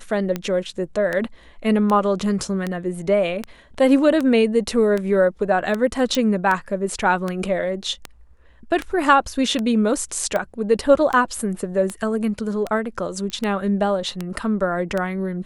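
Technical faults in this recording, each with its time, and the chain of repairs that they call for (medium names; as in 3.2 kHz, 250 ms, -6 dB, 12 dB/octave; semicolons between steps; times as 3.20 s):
tick 78 rpm -11 dBFS
6.15 s: pop
13.30 s: pop -15 dBFS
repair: de-click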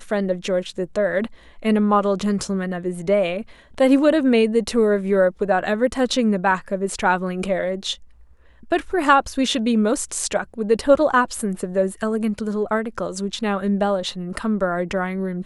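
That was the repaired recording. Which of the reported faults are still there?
6.15 s: pop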